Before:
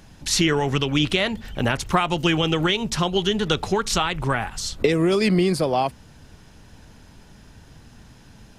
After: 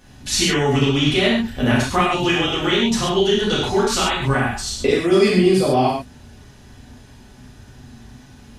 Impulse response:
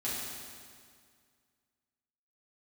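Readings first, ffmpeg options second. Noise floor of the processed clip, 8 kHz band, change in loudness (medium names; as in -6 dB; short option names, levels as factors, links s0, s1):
-45 dBFS, +3.5 dB, +4.0 dB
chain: -filter_complex "[1:a]atrim=start_sample=2205,atrim=end_sample=6615[s0];[0:a][s0]afir=irnorm=-1:irlink=0"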